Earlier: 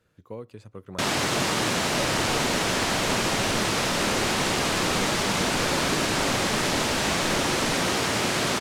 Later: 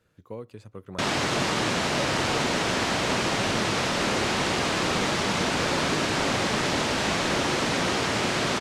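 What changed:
first sound: add distance through air 50 m; second sound -10.0 dB

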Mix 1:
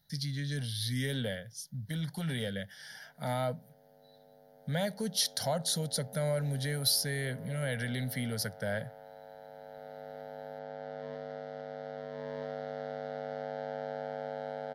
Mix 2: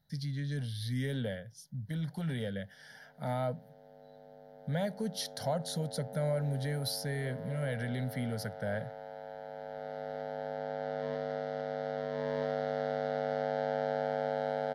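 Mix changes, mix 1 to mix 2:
speech: add treble shelf 2.2 kHz -10.5 dB; background +5.5 dB

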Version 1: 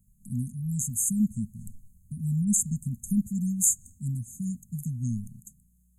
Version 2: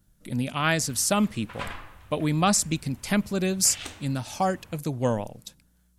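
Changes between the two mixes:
background +8.0 dB; master: remove brick-wall FIR band-stop 250–6300 Hz

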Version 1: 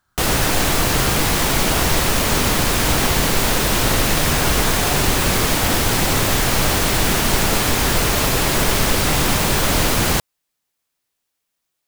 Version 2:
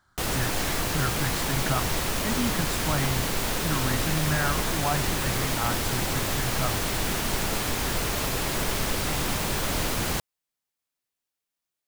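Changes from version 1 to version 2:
speech +3.5 dB; background -10.0 dB

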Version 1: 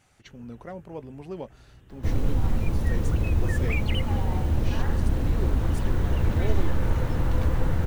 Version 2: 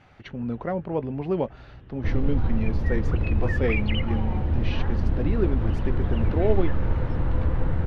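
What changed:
speech +11.5 dB; first sound +6.5 dB; master: add distance through air 300 m

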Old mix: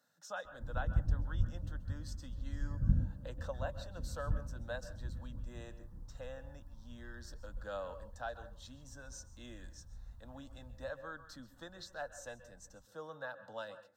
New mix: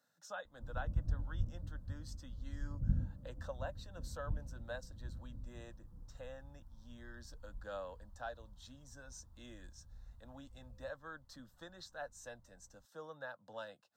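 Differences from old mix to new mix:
background -3.5 dB; reverb: off

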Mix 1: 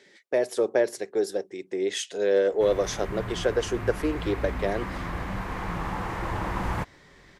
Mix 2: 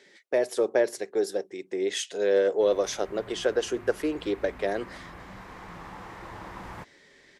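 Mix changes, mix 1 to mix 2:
background -10.0 dB; master: add bass shelf 120 Hz -8.5 dB

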